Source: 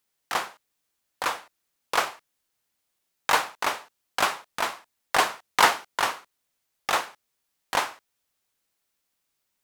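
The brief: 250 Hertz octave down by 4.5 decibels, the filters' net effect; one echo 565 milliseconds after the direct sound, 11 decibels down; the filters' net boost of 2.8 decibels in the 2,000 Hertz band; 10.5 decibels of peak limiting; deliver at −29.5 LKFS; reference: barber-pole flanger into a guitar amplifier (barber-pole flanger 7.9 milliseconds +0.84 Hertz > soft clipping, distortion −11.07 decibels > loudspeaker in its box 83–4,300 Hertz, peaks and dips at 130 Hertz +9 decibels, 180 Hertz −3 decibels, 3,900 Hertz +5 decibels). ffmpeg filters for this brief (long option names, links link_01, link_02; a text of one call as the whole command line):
ffmpeg -i in.wav -filter_complex "[0:a]equalizer=frequency=250:width_type=o:gain=-6.5,equalizer=frequency=2000:width_type=o:gain=3.5,alimiter=limit=-13dB:level=0:latency=1,aecho=1:1:565:0.282,asplit=2[link_01][link_02];[link_02]adelay=7.9,afreqshift=0.84[link_03];[link_01][link_03]amix=inputs=2:normalize=1,asoftclip=threshold=-26.5dB,highpass=83,equalizer=frequency=130:width_type=q:width=4:gain=9,equalizer=frequency=180:width_type=q:width=4:gain=-3,equalizer=frequency=3900:width_type=q:width=4:gain=5,lowpass=frequency=4300:width=0.5412,lowpass=frequency=4300:width=1.3066,volume=7dB" out.wav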